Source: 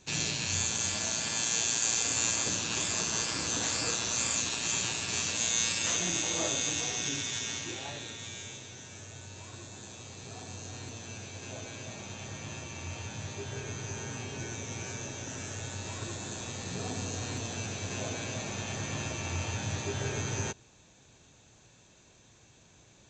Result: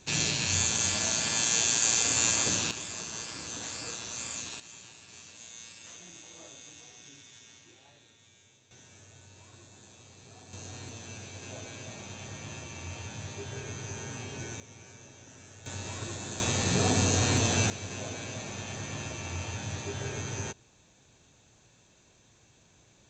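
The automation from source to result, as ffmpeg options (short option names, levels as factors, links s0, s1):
-af "asetnsamples=n=441:p=0,asendcmd='2.71 volume volume -7dB;4.6 volume volume -18dB;8.71 volume volume -7.5dB;10.53 volume volume -0.5dB;14.6 volume volume -12dB;15.66 volume volume 0.5dB;16.4 volume volume 11dB;17.7 volume volume -2dB',volume=1.5"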